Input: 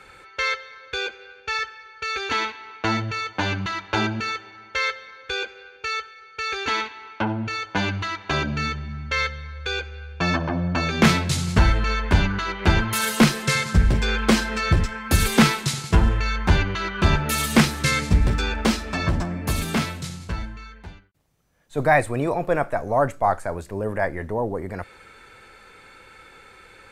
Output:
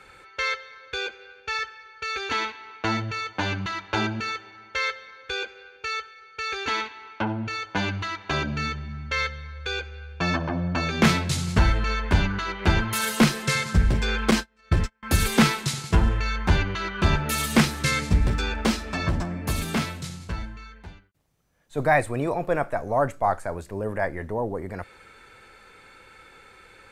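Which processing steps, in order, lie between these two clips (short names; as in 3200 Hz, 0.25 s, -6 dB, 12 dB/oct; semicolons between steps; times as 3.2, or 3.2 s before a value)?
14.31–15.03 gate -20 dBFS, range -37 dB; gain -2.5 dB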